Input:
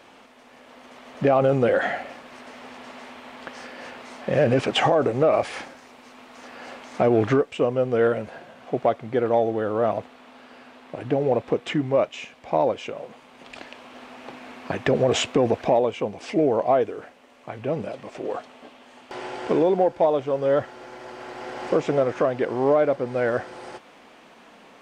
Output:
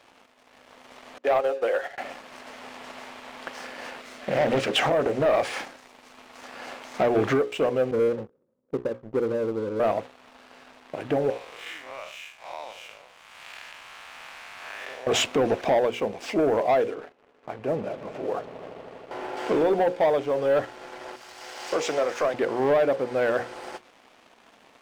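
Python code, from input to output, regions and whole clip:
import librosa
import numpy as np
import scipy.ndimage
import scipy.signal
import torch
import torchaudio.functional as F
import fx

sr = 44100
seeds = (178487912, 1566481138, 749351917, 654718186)

y = fx.chain(x, sr, fx.highpass(hz=370.0, slope=24),
    fx.upward_expand(threshold_db=-32.0, expansion=2.5), at=(1.18, 1.98))
y = fx.chain(y, sr, fx.peak_eq(hz=890.0, db=-10.0, octaves=0.5),
    fx.hum_notches(base_hz=60, count=9),
    fx.doppler_dist(depth_ms=0.57), at=(4.0, 5.26))
y = fx.chain(y, sr, fx.steep_lowpass(hz=560.0, slope=96),
    fx.low_shelf(hz=160.0, db=8.0),
    fx.power_curve(exponent=1.4), at=(7.91, 9.8))
y = fx.chain(y, sr, fx.spec_blur(span_ms=155.0),
    fx.highpass(hz=1300.0, slope=12),
    fx.band_squash(depth_pct=70), at=(11.3, 15.07))
y = fx.chain(y, sr, fx.lowpass(hz=1400.0, slope=6),
    fx.echo_swell(ms=80, loudest=5, wet_db=-18.0), at=(16.94, 19.37))
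y = fx.chain(y, sr, fx.highpass(hz=580.0, slope=6),
    fx.peak_eq(hz=6200.0, db=8.5, octaves=1.7),
    fx.band_widen(depth_pct=40), at=(21.16, 22.34))
y = fx.low_shelf(y, sr, hz=150.0, db=-10.5)
y = fx.hum_notches(y, sr, base_hz=60, count=9)
y = fx.leveller(y, sr, passes=2)
y = y * 10.0 ** (-5.5 / 20.0)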